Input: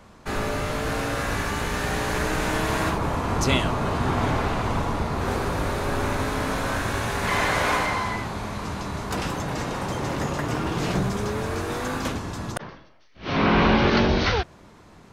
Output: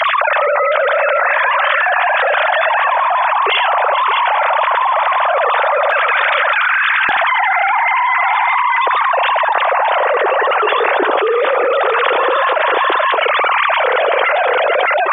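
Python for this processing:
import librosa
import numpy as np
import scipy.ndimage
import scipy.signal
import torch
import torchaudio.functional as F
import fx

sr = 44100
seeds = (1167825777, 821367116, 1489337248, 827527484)

y = fx.sine_speech(x, sr)
y = fx.highpass(y, sr, hz=fx.steps((0.0, 520.0), (5.91, 1300.0), (7.09, 320.0)), slope=24)
y = fx.echo_multitap(y, sr, ms=(75, 431, 616), db=(-13.5, -17.5, -11.0))
y = fx.env_flatten(y, sr, amount_pct=100)
y = y * librosa.db_to_amplitude(2.5)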